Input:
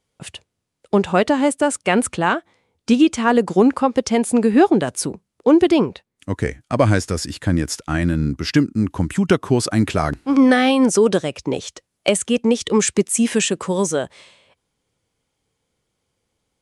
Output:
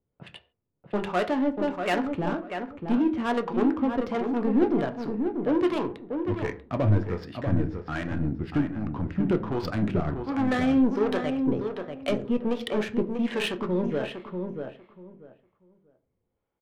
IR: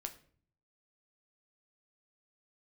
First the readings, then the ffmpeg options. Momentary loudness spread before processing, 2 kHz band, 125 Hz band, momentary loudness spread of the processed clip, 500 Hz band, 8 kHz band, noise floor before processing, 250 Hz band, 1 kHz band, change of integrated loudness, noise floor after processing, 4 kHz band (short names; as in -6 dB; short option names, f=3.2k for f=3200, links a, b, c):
11 LU, -10.5 dB, -6.5 dB, 9 LU, -9.0 dB, under -25 dB, -77 dBFS, -8.0 dB, -9.5 dB, -9.0 dB, -79 dBFS, -12.0 dB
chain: -filter_complex "[0:a]asoftclip=type=tanh:threshold=-13dB,lowpass=f=4.6k:w=0.5412,lowpass=f=4.6k:w=1.3066,acrossover=split=510[a][b];[a]aeval=exprs='val(0)*(1-0.7/2+0.7/2*cos(2*PI*1.3*n/s))':c=same[c];[b]aeval=exprs='val(0)*(1-0.7/2-0.7/2*cos(2*PI*1.3*n/s))':c=same[d];[c][d]amix=inputs=2:normalize=0[e];[1:a]atrim=start_sample=2205,afade=t=out:st=0.21:d=0.01,atrim=end_sample=9702[f];[e][f]afir=irnorm=-1:irlink=0,adynamicsmooth=sensitivity=3.5:basefreq=1.5k,asplit=2[g][h];[h]adelay=640,lowpass=f=2k:p=1,volume=-6dB,asplit=2[i][j];[j]adelay=640,lowpass=f=2k:p=1,volume=0.2,asplit=2[k][l];[l]adelay=640,lowpass=f=2k:p=1,volume=0.2[m];[g][i][k][m]amix=inputs=4:normalize=0"